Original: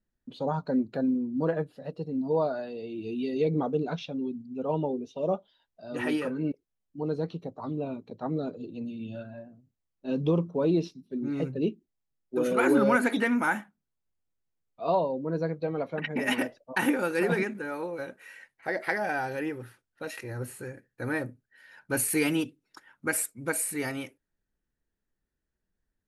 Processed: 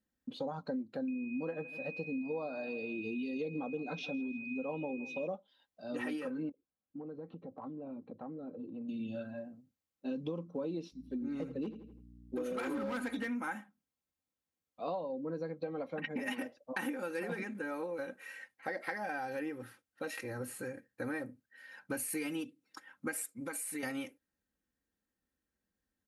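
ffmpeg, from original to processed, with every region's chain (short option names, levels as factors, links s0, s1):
-filter_complex "[0:a]asettb=1/sr,asplit=3[s0][s1][s2];[s0]atrim=end=1.084[s3];[s1]atrim=start=1.08:end=5.27,asetpts=PTS-STARTPTS,afade=t=in:d=0.004:c=qsin,afade=t=out:st=4.186:d=0.004:c=qsin,aeval=exprs='val(0)+0.0224*sin(2*PI*2500*n/s)':c=same,aecho=1:1:161|322|483:0.0891|0.0348|0.0136,atrim=end_sample=184779[s4];[s2]atrim=start=5.266[s5];[s3][s4]acrossfade=d=0.004:c1=hsin:c2=qsin[s6];[s6][s5]acrossfade=d=0.004:c1=qsin:c2=hsin,asettb=1/sr,asplit=3[s7][s8][s9];[s7]atrim=end=6.494[s10];[s8]atrim=start=6.49:end=8.89,asetpts=PTS-STARTPTS,afade=t=in:d=0.004:c=qsin,afade=t=out:st=2.396:d=0.004:c=qsin,lowpass=1500,acompressor=threshold=0.00891:ratio=6:attack=3.2:release=140:knee=1:detection=peak[s11];[s9]atrim=start=8.886[s12];[s10][s11]acrossfade=d=0.004:c1=hsin:c2=qsin[s13];[s13][s12]acrossfade=d=0.004:c1=qsin:c2=hsin,asettb=1/sr,asplit=3[s14][s15][s16];[s14]atrim=end=10.924[s17];[s15]atrim=start=10.92:end=13.29,asetpts=PTS-STARTPTS,afade=t=in:d=0.004:c=qsin,afade=t=out:st=2.366:d=0.004:c=qsin,aeval=exprs='val(0)+0.00251*(sin(2*PI*60*n/s)+sin(2*PI*2*60*n/s)/2+sin(2*PI*3*60*n/s)/3+sin(2*PI*4*60*n/s)/4+sin(2*PI*5*60*n/s)/5)':c=same,asoftclip=type=hard:threshold=0.0944,asplit=2[s18][s19];[s19]adelay=83,lowpass=f=4900:p=1,volume=0.211,asplit=2[s20][s21];[s21]adelay=83,lowpass=f=4900:p=1,volume=0.37,asplit=2[s22][s23];[s23]adelay=83,lowpass=f=4900:p=1,volume=0.37,asplit=2[s24][s25];[s25]adelay=83,lowpass=f=4900:p=1,volume=0.37[s26];[s18][s20][s22][s24][s26]amix=inputs=5:normalize=0,atrim=end_sample=104517[s27];[s16]atrim=start=13.286[s28];[s17][s27]acrossfade=d=0.004:c1=hsin:c2=qsin[s29];[s29][s28]acrossfade=d=0.004:c1=qsin:c2=hsin,asettb=1/sr,asplit=3[s30][s31][s32];[s30]atrim=end=23.404[s33];[s31]atrim=start=23.4:end=23.83,asetpts=PTS-STARTPTS,afade=t=in:d=0.004:c=qsin,afade=t=out:st=0.426:d=0.004:c=qsin,equalizer=f=150:t=o:w=1.8:g=-6.5,aecho=1:1:7.2:0.49,atrim=end_sample=18963,acompressor=threshold=0.0158:ratio=4:attack=3.2:release=140:knee=1:detection=peak[s34];[s32]atrim=start=23.826[s35];[s33][s34]acrossfade=d=0.004:c1=hsin:c2=qsin[s36];[s36][s35]acrossfade=d=0.004:c1=qsin:c2=hsin,aecho=1:1:3.8:0.5,acompressor=threshold=0.02:ratio=6,highpass=80,volume=0.841"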